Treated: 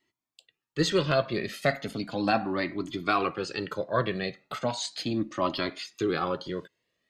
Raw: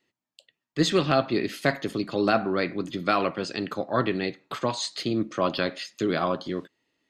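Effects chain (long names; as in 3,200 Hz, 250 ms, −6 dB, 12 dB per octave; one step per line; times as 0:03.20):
flanger whose copies keep moving one way rising 0.36 Hz
level +2.5 dB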